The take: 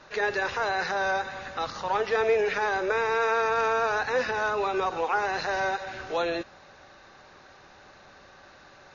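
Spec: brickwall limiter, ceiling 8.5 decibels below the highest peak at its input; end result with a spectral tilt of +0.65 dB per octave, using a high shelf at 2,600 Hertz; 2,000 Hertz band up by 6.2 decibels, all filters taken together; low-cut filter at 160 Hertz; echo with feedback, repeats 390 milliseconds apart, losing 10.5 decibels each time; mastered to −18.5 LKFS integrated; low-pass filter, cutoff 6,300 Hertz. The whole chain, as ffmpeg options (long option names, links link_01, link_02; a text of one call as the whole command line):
ffmpeg -i in.wav -af "highpass=160,lowpass=6300,equalizer=frequency=2000:width_type=o:gain=6.5,highshelf=frequency=2600:gain=5,alimiter=limit=-19dB:level=0:latency=1,aecho=1:1:390|780|1170:0.299|0.0896|0.0269,volume=8.5dB" out.wav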